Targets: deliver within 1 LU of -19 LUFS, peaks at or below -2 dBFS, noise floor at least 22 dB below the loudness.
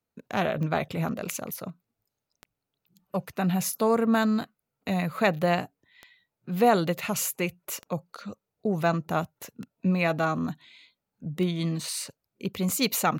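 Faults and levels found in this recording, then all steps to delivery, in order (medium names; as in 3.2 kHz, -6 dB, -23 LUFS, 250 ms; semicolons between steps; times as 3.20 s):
clicks found 7; loudness -27.5 LUFS; peak level -9.5 dBFS; loudness target -19.0 LUFS
-> de-click; trim +8.5 dB; peak limiter -2 dBFS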